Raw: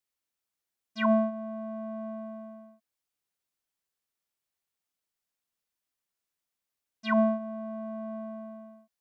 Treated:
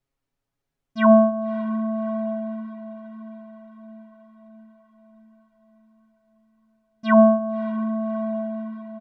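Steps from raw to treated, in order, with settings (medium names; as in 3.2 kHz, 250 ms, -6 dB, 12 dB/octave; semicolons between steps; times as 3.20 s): tilt EQ -4 dB/octave; comb 7.3 ms, depth 82%; echo that smears into a reverb 599 ms, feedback 59%, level -15 dB; trim +5.5 dB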